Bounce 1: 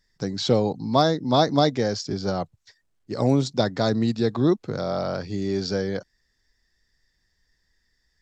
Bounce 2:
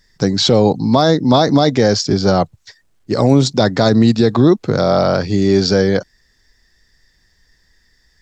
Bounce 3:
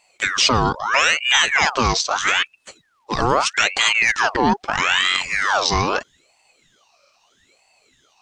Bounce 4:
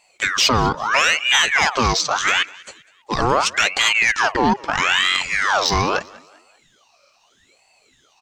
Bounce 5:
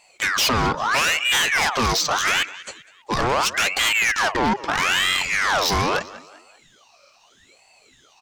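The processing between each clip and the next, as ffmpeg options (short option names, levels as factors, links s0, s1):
-af "alimiter=level_in=5.01:limit=0.891:release=50:level=0:latency=1,volume=0.891"
-af "equalizer=f=2600:w=0.36:g=9,aeval=exprs='val(0)*sin(2*PI*1600*n/s+1600*0.65/0.78*sin(2*PI*0.78*n/s))':c=same,volume=0.562"
-filter_complex "[0:a]acontrast=32,asplit=4[s0][s1][s2][s3];[s1]adelay=197,afreqshift=78,volume=0.0708[s4];[s2]adelay=394,afreqshift=156,volume=0.0299[s5];[s3]adelay=591,afreqshift=234,volume=0.0124[s6];[s0][s4][s5][s6]amix=inputs=4:normalize=0,volume=0.631"
-af "asoftclip=type=tanh:threshold=0.119,volume=1.41"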